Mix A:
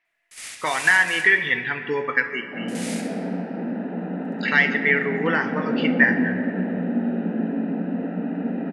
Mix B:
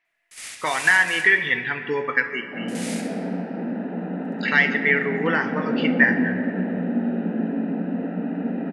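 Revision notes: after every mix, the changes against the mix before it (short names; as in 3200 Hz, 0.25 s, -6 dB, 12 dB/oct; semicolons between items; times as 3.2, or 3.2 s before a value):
none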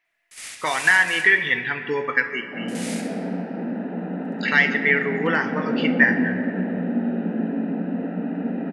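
speech: remove air absorption 55 m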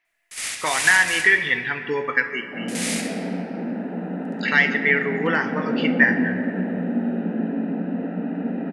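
first sound +8.0 dB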